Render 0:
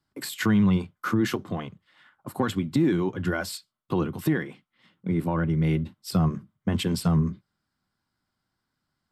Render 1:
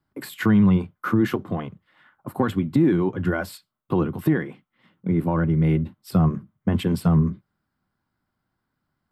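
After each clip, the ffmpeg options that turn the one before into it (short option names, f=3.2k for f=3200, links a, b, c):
-af "equalizer=f=6.1k:w=0.55:g=-12.5,volume=4dB"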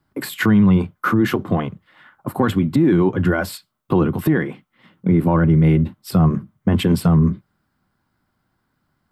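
-af "alimiter=limit=-15.5dB:level=0:latency=1:release=50,volume=8dB"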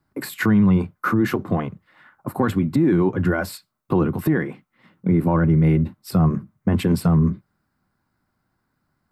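-af "equalizer=f=3.2k:w=4.4:g=-7,volume=-2.5dB"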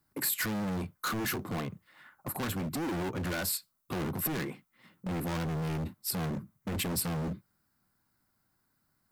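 -af "asoftclip=type=hard:threshold=-25dB,crystalizer=i=3:c=0,volume=-7dB"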